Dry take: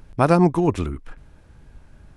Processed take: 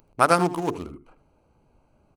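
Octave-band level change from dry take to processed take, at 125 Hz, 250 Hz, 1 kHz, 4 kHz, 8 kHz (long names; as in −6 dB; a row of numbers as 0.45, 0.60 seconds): −11.0, −8.5, +1.0, +4.0, +7.0 decibels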